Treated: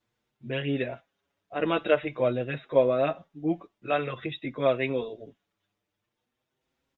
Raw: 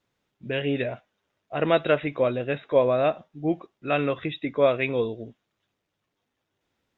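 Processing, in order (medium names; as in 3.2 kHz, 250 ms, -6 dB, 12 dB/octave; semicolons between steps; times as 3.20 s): endless flanger 6.3 ms +0.5 Hz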